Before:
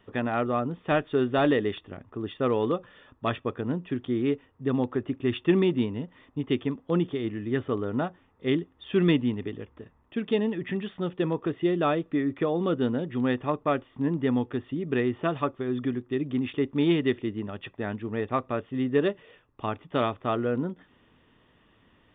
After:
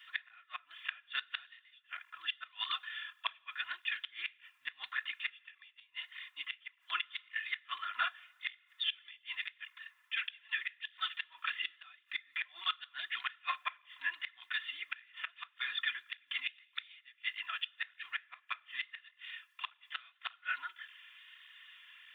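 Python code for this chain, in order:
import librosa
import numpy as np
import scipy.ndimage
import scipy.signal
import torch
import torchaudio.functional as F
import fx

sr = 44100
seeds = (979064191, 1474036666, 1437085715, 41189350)

y = scipy.signal.sosfilt(scipy.signal.cheby2(4, 60, 500.0, 'highpass', fs=sr, output='sos'), x)
y = y + 0.71 * np.pad(y, (int(2.9 * sr / 1000.0), 0))[:len(y)]
y = fx.gate_flip(y, sr, shuts_db=-32.0, range_db=-33)
y = fx.rev_double_slope(y, sr, seeds[0], early_s=0.21, late_s=1.6, knee_db=-18, drr_db=16.0)
y = fx.flanger_cancel(y, sr, hz=1.7, depth_ms=6.8)
y = y * librosa.db_to_amplitude(14.0)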